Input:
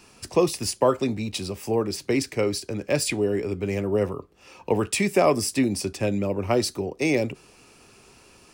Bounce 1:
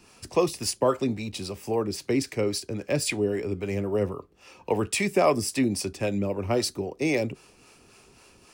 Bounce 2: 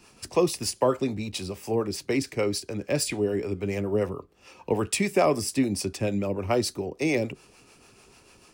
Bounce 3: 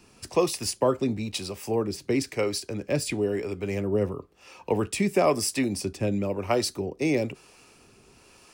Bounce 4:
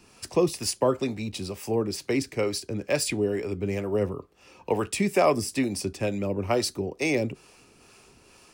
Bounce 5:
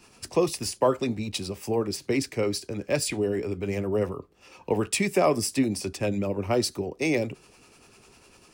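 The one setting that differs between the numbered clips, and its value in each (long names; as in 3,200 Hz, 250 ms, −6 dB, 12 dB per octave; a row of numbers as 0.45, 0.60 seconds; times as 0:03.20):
two-band tremolo in antiphase, speed: 3.7, 6.8, 1, 2.2, 10 Hertz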